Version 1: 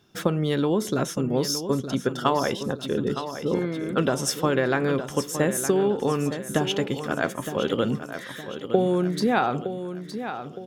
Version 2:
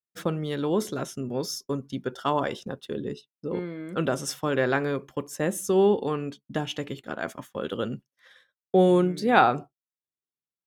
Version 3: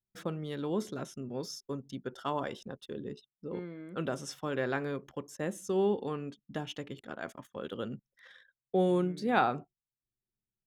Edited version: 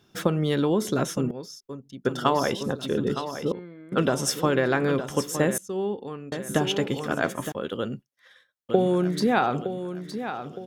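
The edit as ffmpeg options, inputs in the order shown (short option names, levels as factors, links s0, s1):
-filter_complex "[2:a]asplit=3[s0][s1][s2];[0:a]asplit=5[s3][s4][s5][s6][s7];[s3]atrim=end=1.312[s8];[s0]atrim=start=1.308:end=2.052[s9];[s4]atrim=start=2.048:end=3.522[s10];[s1]atrim=start=3.518:end=3.922[s11];[s5]atrim=start=3.918:end=5.582[s12];[s2]atrim=start=5.578:end=6.322[s13];[s6]atrim=start=6.318:end=7.522[s14];[1:a]atrim=start=7.518:end=8.692[s15];[s7]atrim=start=8.688[s16];[s8][s9]acrossfade=d=0.004:c1=hsin:c2=hsin[s17];[s17][s10]acrossfade=d=0.004:c1=hsin:c2=hsin[s18];[s18][s11]acrossfade=d=0.004:c1=hsin:c2=hsin[s19];[s19][s12]acrossfade=d=0.004:c1=hsin:c2=hsin[s20];[s20][s13]acrossfade=d=0.004:c1=hsin:c2=hsin[s21];[s21][s14]acrossfade=d=0.004:c1=hsin:c2=hsin[s22];[s22][s15]acrossfade=d=0.004:c1=hsin:c2=hsin[s23];[s23][s16]acrossfade=d=0.004:c1=hsin:c2=hsin"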